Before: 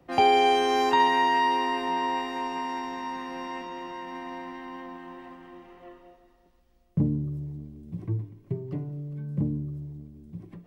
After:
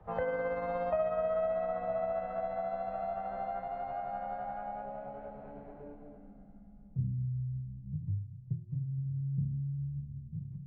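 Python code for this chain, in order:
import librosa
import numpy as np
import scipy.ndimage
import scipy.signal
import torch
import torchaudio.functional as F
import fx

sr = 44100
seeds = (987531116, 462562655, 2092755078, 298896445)

y = fx.pitch_glide(x, sr, semitones=-7.5, runs='ending unshifted')
y = fx.tone_stack(y, sr, knobs='10-0-10')
y = fx.echo_feedback(y, sr, ms=996, feedback_pct=54, wet_db=-20.0)
y = fx.filter_sweep_lowpass(y, sr, from_hz=780.0, to_hz=160.0, start_s=4.53, end_s=7.21, q=2.5)
y = fx.band_squash(y, sr, depth_pct=70)
y = y * 10.0 ** (4.5 / 20.0)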